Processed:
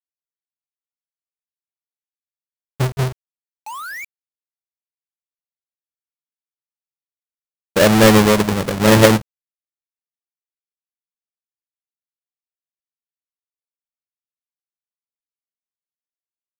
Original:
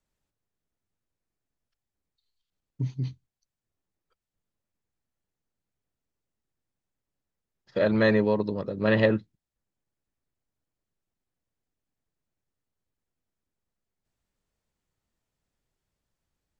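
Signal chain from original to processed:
each half-wave held at its own peak
sound drawn into the spectrogram rise, 0:03.66–0:04.05, 820–2,400 Hz −36 dBFS
bit reduction 7 bits
level +7 dB

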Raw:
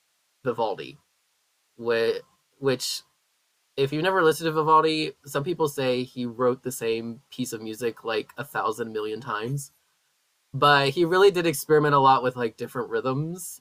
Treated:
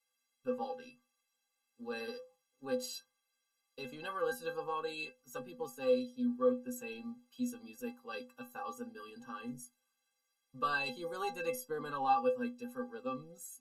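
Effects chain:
stiff-string resonator 240 Hz, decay 0.3 s, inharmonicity 0.03

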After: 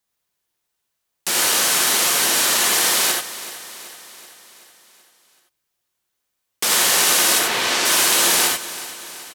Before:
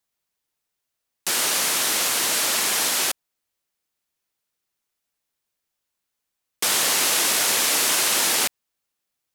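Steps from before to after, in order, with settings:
0:07.38–0:07.84: low-pass filter 2,700 Hz → 6,500 Hz 12 dB per octave
repeating echo 380 ms, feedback 57%, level −15.5 dB
reverb whose tail is shaped and stops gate 110 ms rising, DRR 0 dB
level +1.5 dB

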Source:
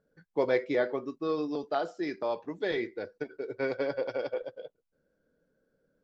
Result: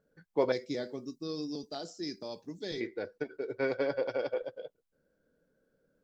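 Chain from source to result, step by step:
0:00.52–0:02.81: drawn EQ curve 230 Hz 0 dB, 390 Hz −8 dB, 1,200 Hz −16 dB, 2,900 Hz −8 dB, 5,100 Hz +10 dB

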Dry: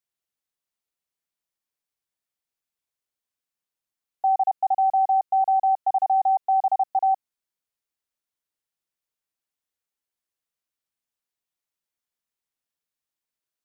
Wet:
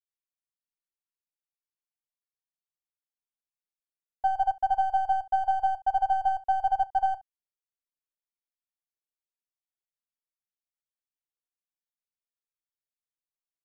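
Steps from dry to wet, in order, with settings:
gain on one half-wave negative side −3 dB
ambience of single reflections 32 ms −9.5 dB, 68 ms −10.5 dB
expander for the loud parts 2.5 to 1, over −31 dBFS

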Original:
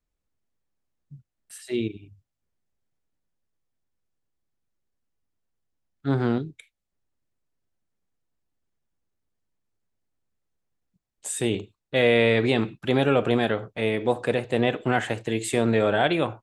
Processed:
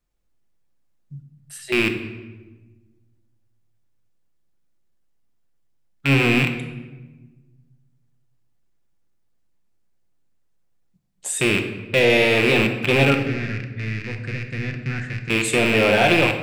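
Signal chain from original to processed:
loose part that buzzes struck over −34 dBFS, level −11 dBFS
0:13.14–0:15.30: drawn EQ curve 110 Hz 0 dB, 810 Hz −28 dB, 1,800 Hz −7 dB, 3,200 Hz −23 dB, 4,900 Hz −9 dB, 11,000 Hz −26 dB
in parallel at −4 dB: hard clipping −23 dBFS, distortion −6 dB
on the sum: rectangular room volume 810 cubic metres, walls mixed, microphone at 0.86 metres

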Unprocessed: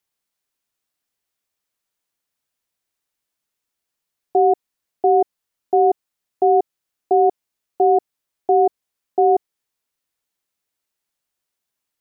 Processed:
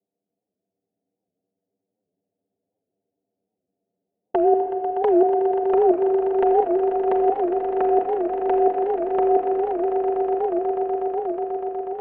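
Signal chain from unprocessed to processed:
Butterworth low-pass 780 Hz 72 dB per octave
low-pass that shuts in the quiet parts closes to 570 Hz, open at −13 dBFS
high-pass filter 190 Hz 12 dB per octave
compressor whose output falls as the input rises −23 dBFS, ratio −1
flanger swept by the level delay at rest 10.3 ms, full sweep at −25 dBFS
echo that builds up and dies away 122 ms, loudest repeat 8, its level −10.5 dB
convolution reverb RT60 2.0 s, pre-delay 4 ms, DRR 3 dB
wow of a warped record 78 rpm, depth 160 cents
level +5.5 dB

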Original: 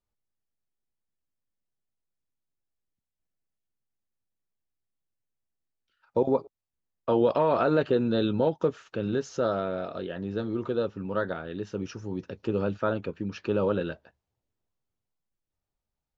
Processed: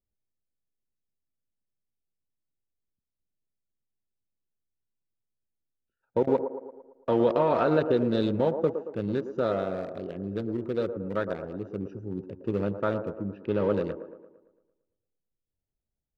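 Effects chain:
adaptive Wiener filter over 41 samples
0:13.21–0:13.68: low-pass filter 3,700 Hz → 5,900 Hz 24 dB per octave
delay with a band-pass on its return 113 ms, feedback 51%, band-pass 580 Hz, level −7.5 dB

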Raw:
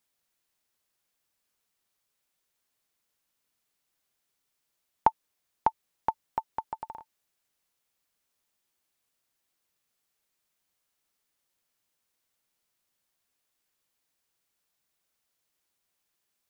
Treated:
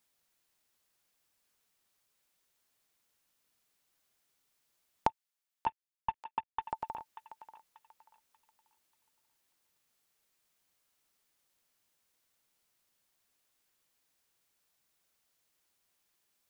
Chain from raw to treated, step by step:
0:05.09–0:06.62: variable-slope delta modulation 16 kbit/s
downward compressor 2 to 1, threshold −35 dBFS, peak gain reduction 11 dB
feedback echo with a high-pass in the loop 587 ms, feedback 39%, high-pass 840 Hz, level −11.5 dB
level +2 dB

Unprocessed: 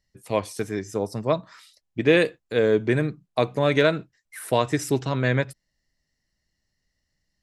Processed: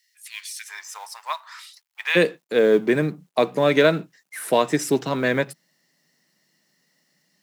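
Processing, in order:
mu-law and A-law mismatch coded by mu
elliptic high-pass filter 1,800 Hz, stop band 80 dB, from 0:00.67 890 Hz, from 0:02.15 160 Hz
level +3 dB

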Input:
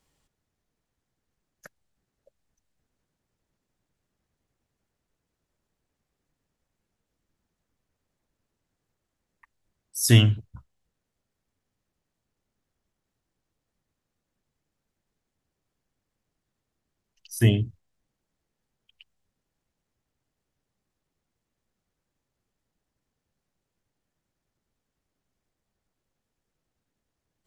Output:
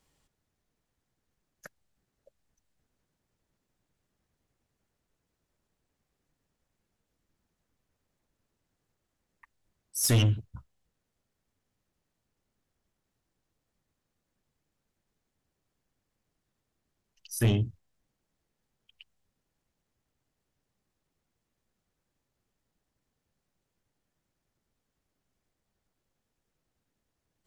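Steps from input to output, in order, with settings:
soft clipping −19 dBFS, distortion −8 dB

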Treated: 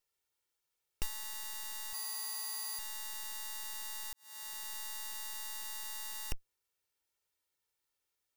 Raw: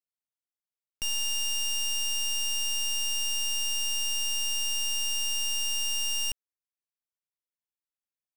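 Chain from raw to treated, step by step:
lower of the sound and its delayed copy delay 2.2 ms
0:01.93–0:02.79: stiff-string resonator 81 Hz, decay 0.44 s, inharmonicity 0.03
0:04.13–0:04.74: fade in quadratic
soft clipping −37.5 dBFS, distortion −3 dB
level +10.5 dB

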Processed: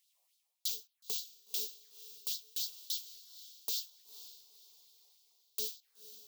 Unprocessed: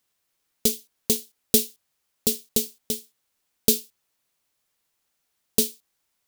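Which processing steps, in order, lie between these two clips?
reversed playback
downward compressor 4 to 1, threshold −34 dBFS, peak gain reduction 18 dB
reversed playback
auto-filter high-pass sine 3.5 Hz 620–4,100 Hz
phaser swept by the level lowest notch 250 Hz, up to 2,000 Hz, full sweep at −37.5 dBFS
feedback delay with all-pass diffusion 501 ms, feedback 41%, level −14 dB

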